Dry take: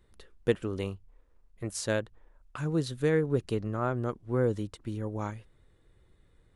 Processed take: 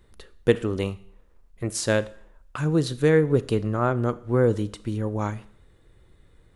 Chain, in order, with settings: Schroeder reverb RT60 0.59 s, combs from 26 ms, DRR 16 dB; trim +7 dB

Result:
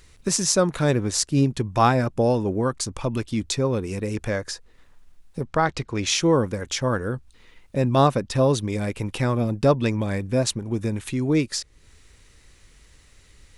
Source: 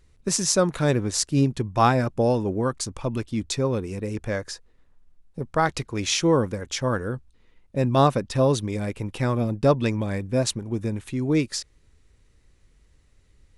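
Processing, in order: in parallel at -3 dB: compression, threshold -36 dBFS, peak gain reduction 21 dB; 5.43–6.07 s: on the sum: distance through air 65 m; tape noise reduction on one side only encoder only

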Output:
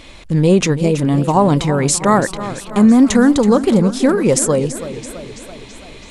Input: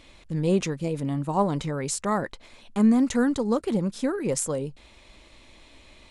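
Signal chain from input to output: loudness maximiser +15 dB; modulated delay 330 ms, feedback 59%, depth 126 cents, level -13 dB; trim -2 dB

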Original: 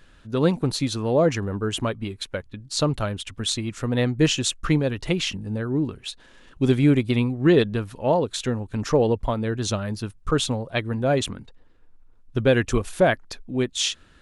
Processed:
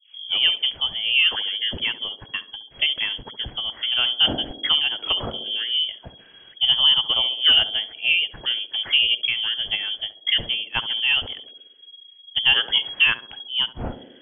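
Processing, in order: tape start-up on the opening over 0.46 s; frequency inversion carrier 3.3 kHz; band-passed feedback delay 68 ms, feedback 74%, band-pass 370 Hz, level -8 dB

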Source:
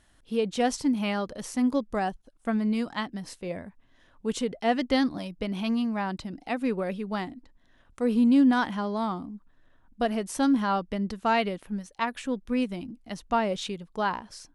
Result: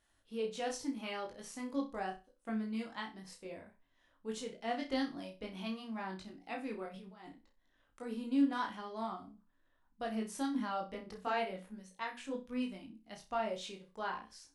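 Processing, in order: bass shelf 210 Hz -7.5 dB; hum notches 60/120/180/240 Hz; 6.86–7.27 s: compressor with a negative ratio -42 dBFS, ratio -1; chorus voices 6, 0.74 Hz, delay 20 ms, depth 2.1 ms; flutter echo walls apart 5.5 m, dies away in 0.27 s; trim -8 dB

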